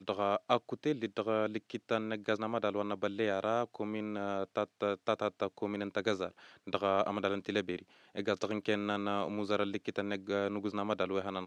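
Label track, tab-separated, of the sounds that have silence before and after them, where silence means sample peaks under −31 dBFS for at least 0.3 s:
6.680000	7.760000	sound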